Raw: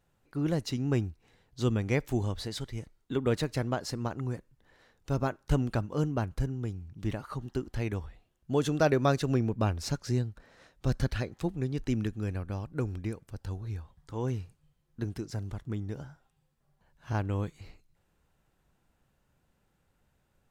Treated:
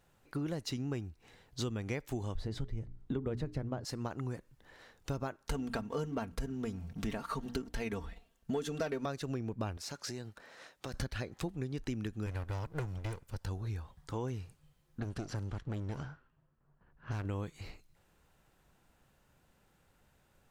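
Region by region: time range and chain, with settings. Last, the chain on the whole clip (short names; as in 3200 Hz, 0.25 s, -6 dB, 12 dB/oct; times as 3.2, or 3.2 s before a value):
2.35–3.85 tilt -3.5 dB/oct + notches 60/120/180/240/300/360/420 Hz
5.43–9.06 notches 60/120/180/240/300 Hz + sample leveller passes 1 + comb 4.4 ms, depth 63%
9.77–10.94 HPF 410 Hz 6 dB/oct + compressor 5:1, threshold -41 dBFS
12.26–13.45 minimum comb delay 2 ms + bell 360 Hz -6 dB 0.94 oct
15–17.25 minimum comb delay 0.68 ms + low-pass opened by the level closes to 1300 Hz, open at -30 dBFS + compressor 1.5:1, threshold -37 dBFS
whole clip: low shelf 350 Hz -4 dB; compressor 6:1, threshold -40 dBFS; gain +5.5 dB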